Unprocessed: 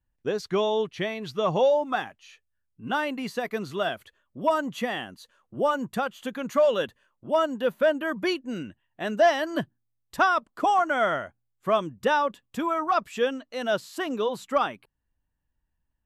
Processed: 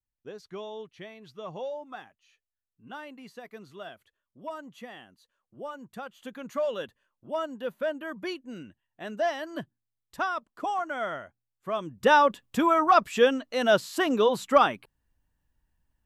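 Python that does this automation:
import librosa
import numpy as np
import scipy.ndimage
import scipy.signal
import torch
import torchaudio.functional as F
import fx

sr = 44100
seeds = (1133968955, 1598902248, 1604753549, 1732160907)

y = fx.gain(x, sr, db=fx.line((5.83, -14.5), (6.28, -8.0), (11.73, -8.0), (12.14, 4.5)))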